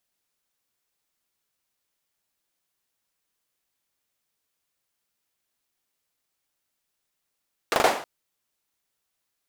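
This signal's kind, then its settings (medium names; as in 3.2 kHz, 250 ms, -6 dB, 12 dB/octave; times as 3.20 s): hand clap length 0.32 s, apart 40 ms, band 680 Hz, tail 0.47 s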